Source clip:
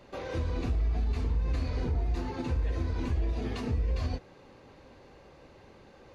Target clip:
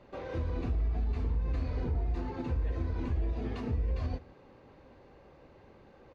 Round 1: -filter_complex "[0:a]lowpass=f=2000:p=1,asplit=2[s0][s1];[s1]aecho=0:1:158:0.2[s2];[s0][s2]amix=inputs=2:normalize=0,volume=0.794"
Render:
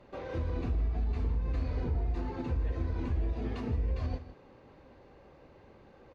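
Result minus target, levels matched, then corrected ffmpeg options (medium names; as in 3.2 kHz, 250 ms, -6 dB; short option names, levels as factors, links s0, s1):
echo-to-direct +8.5 dB
-filter_complex "[0:a]lowpass=f=2000:p=1,asplit=2[s0][s1];[s1]aecho=0:1:158:0.075[s2];[s0][s2]amix=inputs=2:normalize=0,volume=0.794"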